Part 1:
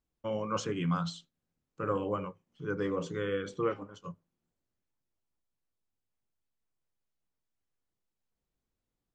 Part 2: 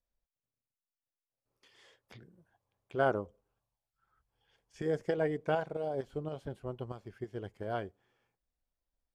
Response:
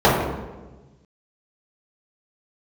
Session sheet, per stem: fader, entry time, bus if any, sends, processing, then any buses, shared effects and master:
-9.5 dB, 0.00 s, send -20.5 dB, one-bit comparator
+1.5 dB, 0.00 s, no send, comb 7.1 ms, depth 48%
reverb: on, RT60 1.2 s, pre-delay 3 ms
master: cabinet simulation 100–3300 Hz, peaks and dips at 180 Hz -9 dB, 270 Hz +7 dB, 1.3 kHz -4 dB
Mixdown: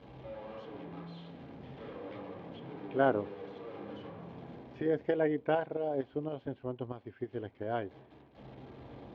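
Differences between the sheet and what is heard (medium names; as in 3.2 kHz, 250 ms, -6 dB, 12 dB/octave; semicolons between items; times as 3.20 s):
stem 1 -9.5 dB -> -15.5 dB; stem 2: missing comb 7.1 ms, depth 48%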